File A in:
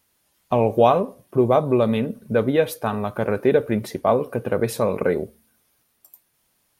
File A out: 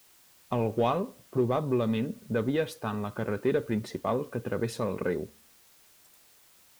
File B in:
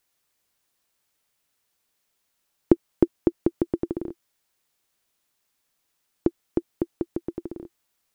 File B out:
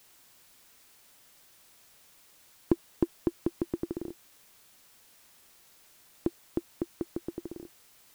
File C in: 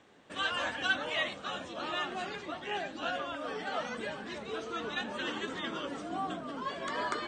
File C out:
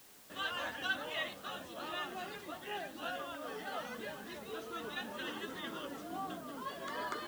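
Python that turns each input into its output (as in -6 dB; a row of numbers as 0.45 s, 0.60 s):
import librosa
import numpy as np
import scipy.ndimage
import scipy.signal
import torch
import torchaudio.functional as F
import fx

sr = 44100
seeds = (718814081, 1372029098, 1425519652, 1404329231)

p1 = scipy.signal.sosfilt(scipy.signal.butter(2, 7800.0, 'lowpass', fs=sr, output='sos'), x)
p2 = fx.notch(p1, sr, hz=2300.0, q=12.0)
p3 = fx.dynamic_eq(p2, sr, hz=650.0, q=1.4, threshold_db=-34.0, ratio=4.0, max_db=-7)
p4 = fx.dmg_noise_colour(p3, sr, seeds[0], colour='white', level_db=-54.0)
p5 = np.clip(p4, -10.0 ** (-18.0 / 20.0), 10.0 ** (-18.0 / 20.0))
p6 = p4 + (p5 * librosa.db_to_amplitude(-8.0))
y = p6 * librosa.db_to_amplitude(-8.5)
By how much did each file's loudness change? -9.0 LU, -8.0 LU, -5.5 LU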